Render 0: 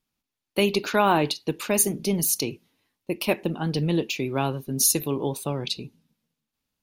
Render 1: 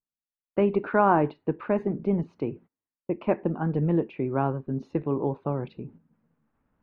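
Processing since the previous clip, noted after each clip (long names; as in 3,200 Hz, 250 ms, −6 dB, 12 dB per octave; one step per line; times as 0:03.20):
noise gate −47 dBFS, range −23 dB
low-pass filter 1,600 Hz 24 dB per octave
reversed playback
upward compression, threshold −44 dBFS
reversed playback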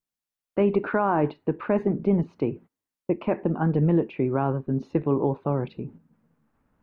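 brickwall limiter −16 dBFS, peak gain reduction 8.5 dB
level +4 dB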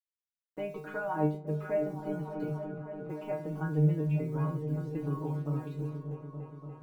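bit reduction 9 bits
stiff-string resonator 150 Hz, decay 0.41 s, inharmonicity 0.002
echo whose low-pass opens from repeat to repeat 290 ms, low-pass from 200 Hz, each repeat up 1 octave, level −3 dB
level +2 dB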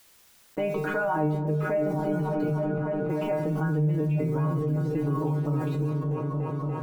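on a send at −13 dB: high-frequency loss of the air 360 metres + convolution reverb RT60 0.70 s, pre-delay 83 ms
on the sum: envelope flattener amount 70%
level −1.5 dB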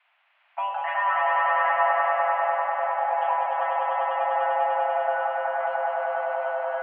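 echo that builds up and dies away 99 ms, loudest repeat 5, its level −4 dB
single-sideband voice off tune +380 Hz 250–2,500 Hz
every ending faded ahead of time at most 100 dB per second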